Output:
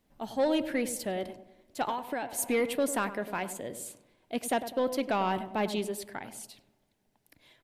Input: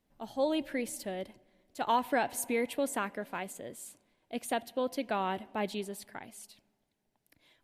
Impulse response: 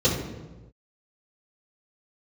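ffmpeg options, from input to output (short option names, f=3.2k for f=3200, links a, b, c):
-filter_complex "[0:a]asettb=1/sr,asplit=3[a][b][c];[a]atrim=end=1.884[d];[b]atrim=start=1.88:end=2.39,asetpts=PTS-STARTPTS,afade=t=in:d=0.004:c=qsin,afade=t=out:st=0.506:d=0.004:c=qsin,acompressor=threshold=-35dB:ratio=10[e];[c]atrim=start=2.386[f];[d][e]acrossfade=d=0.004:c1=hsin:c2=qsin[g];[g][f]acrossfade=d=0.004:c1=qsin:c2=hsin,asoftclip=type=tanh:threshold=-24.5dB,asplit=2[h][i];[i]adelay=100,lowpass=f=890:p=1,volume=-9.5dB,asplit=2[j][k];[k]adelay=100,lowpass=f=890:p=1,volume=0.48,asplit=2[l][m];[m]adelay=100,lowpass=f=890:p=1,volume=0.48,asplit=2[n][o];[o]adelay=100,lowpass=f=890:p=1,volume=0.48,asplit=2[p][q];[q]adelay=100,lowpass=f=890:p=1,volume=0.48[r];[h][j][l][n][p][r]amix=inputs=6:normalize=0,volume=5dB"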